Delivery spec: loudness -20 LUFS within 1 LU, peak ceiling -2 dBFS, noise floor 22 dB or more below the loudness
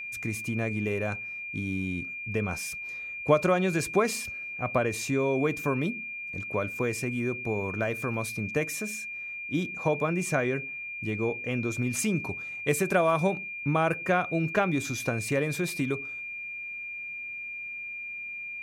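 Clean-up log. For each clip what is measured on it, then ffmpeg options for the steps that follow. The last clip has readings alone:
steady tone 2400 Hz; tone level -35 dBFS; loudness -29.5 LUFS; peak -9.0 dBFS; loudness target -20.0 LUFS
-> -af "bandreject=f=2.4k:w=30"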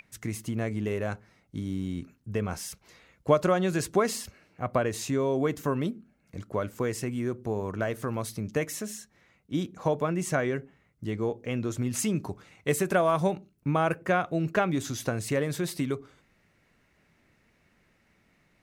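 steady tone none; loudness -30.0 LUFS; peak -9.5 dBFS; loudness target -20.0 LUFS
-> -af "volume=10dB,alimiter=limit=-2dB:level=0:latency=1"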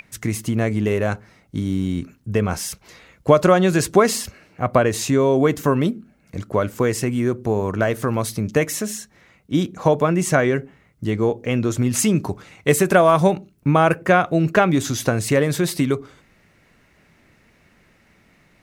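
loudness -20.0 LUFS; peak -2.0 dBFS; noise floor -58 dBFS

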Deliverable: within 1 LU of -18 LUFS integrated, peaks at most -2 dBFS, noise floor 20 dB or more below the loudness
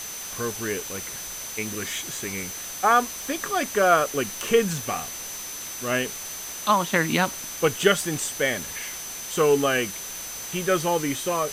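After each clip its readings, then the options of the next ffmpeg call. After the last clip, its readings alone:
steady tone 6100 Hz; tone level -36 dBFS; noise floor -35 dBFS; noise floor target -45 dBFS; loudness -25.0 LUFS; peak -4.5 dBFS; loudness target -18.0 LUFS
-> -af "bandreject=f=6.1k:w=30"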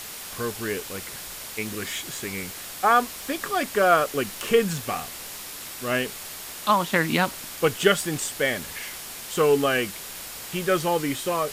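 steady tone none; noise floor -38 dBFS; noise floor target -46 dBFS
-> -af "afftdn=nr=8:nf=-38"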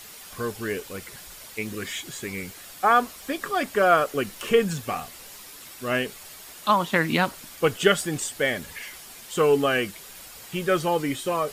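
noise floor -44 dBFS; noise floor target -45 dBFS
-> -af "afftdn=nr=6:nf=-44"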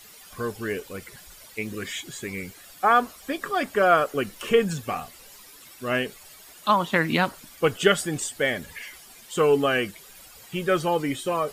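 noise floor -48 dBFS; loudness -25.0 LUFS; peak -5.0 dBFS; loudness target -18.0 LUFS
-> -af "volume=7dB,alimiter=limit=-2dB:level=0:latency=1"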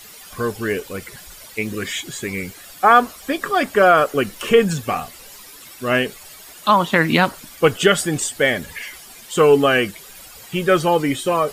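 loudness -18.5 LUFS; peak -2.0 dBFS; noise floor -41 dBFS

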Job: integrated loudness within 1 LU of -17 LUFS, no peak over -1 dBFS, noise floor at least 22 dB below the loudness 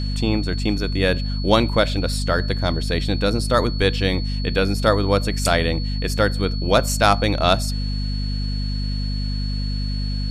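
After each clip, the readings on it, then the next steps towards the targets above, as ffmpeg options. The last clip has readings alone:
hum 50 Hz; harmonics up to 250 Hz; hum level -21 dBFS; steady tone 4400 Hz; tone level -33 dBFS; loudness -21.0 LUFS; peak -2.0 dBFS; loudness target -17.0 LUFS
-> -af "bandreject=f=50:t=h:w=6,bandreject=f=100:t=h:w=6,bandreject=f=150:t=h:w=6,bandreject=f=200:t=h:w=6,bandreject=f=250:t=h:w=6"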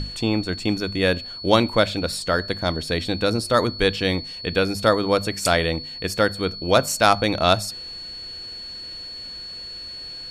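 hum none; steady tone 4400 Hz; tone level -33 dBFS
-> -af "bandreject=f=4.4k:w=30"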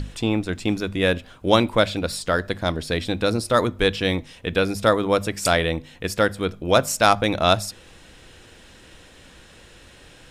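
steady tone none; loudness -22.0 LUFS; peak -1.5 dBFS; loudness target -17.0 LUFS
-> -af "volume=5dB,alimiter=limit=-1dB:level=0:latency=1"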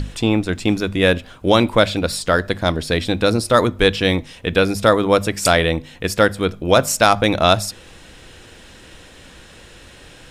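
loudness -17.5 LUFS; peak -1.0 dBFS; noise floor -43 dBFS

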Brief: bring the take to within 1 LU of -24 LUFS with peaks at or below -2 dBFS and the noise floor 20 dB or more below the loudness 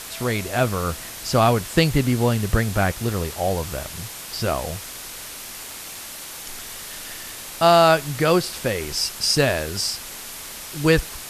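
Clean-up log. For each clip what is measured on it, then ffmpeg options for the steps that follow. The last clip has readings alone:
noise floor -36 dBFS; noise floor target -42 dBFS; loudness -21.5 LUFS; peak -2.5 dBFS; loudness target -24.0 LUFS
-> -af "afftdn=nr=6:nf=-36"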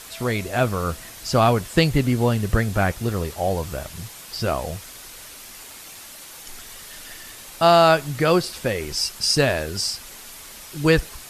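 noise floor -41 dBFS; noise floor target -42 dBFS
-> -af "afftdn=nr=6:nf=-41"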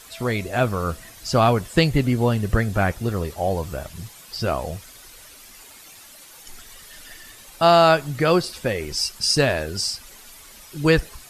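noise floor -45 dBFS; loudness -21.0 LUFS; peak -3.0 dBFS; loudness target -24.0 LUFS
-> -af "volume=-3dB"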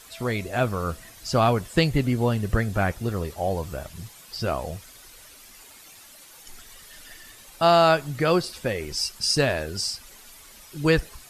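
loudness -24.0 LUFS; peak -6.0 dBFS; noise floor -48 dBFS

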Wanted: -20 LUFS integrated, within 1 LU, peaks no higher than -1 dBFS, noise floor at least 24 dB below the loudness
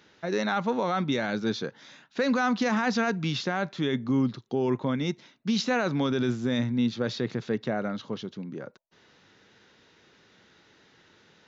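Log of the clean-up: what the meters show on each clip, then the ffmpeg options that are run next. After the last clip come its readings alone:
loudness -28.5 LUFS; peak -17.0 dBFS; loudness target -20.0 LUFS
-> -af "volume=8.5dB"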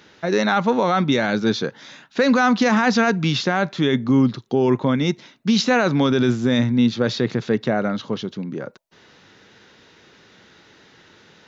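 loudness -20.0 LUFS; peak -8.5 dBFS; noise floor -52 dBFS

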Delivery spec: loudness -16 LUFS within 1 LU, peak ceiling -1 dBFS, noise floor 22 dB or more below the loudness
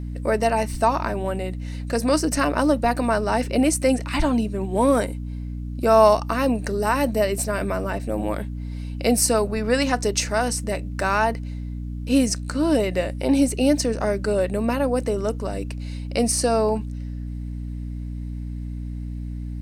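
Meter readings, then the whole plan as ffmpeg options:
hum 60 Hz; harmonics up to 300 Hz; hum level -28 dBFS; loudness -23.0 LUFS; peak -3.0 dBFS; loudness target -16.0 LUFS
-> -af "bandreject=f=60:t=h:w=6,bandreject=f=120:t=h:w=6,bandreject=f=180:t=h:w=6,bandreject=f=240:t=h:w=6,bandreject=f=300:t=h:w=6"
-af "volume=7dB,alimiter=limit=-1dB:level=0:latency=1"

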